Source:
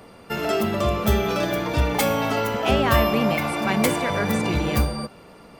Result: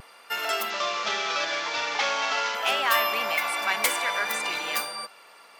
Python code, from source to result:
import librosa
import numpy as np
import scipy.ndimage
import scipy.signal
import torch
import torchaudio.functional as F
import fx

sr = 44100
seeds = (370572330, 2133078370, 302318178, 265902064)

p1 = fx.delta_mod(x, sr, bps=32000, step_db=-27.0, at=(0.7, 2.55))
p2 = scipy.signal.sosfilt(scipy.signal.butter(2, 1100.0, 'highpass', fs=sr, output='sos'), p1)
p3 = fx.vibrato(p2, sr, rate_hz=0.5, depth_cents=16.0)
p4 = np.clip(p3, -10.0 ** (-21.5 / 20.0), 10.0 ** (-21.5 / 20.0))
y = p3 + (p4 * librosa.db_to_amplitude(-10.0))